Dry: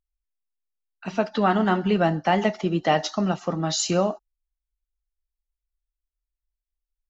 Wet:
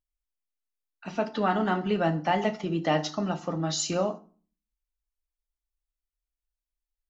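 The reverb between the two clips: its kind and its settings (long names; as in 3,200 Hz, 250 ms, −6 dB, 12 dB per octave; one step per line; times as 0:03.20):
feedback delay network reverb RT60 0.4 s, low-frequency decay 1.45×, high-frequency decay 0.75×, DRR 8.5 dB
level −5 dB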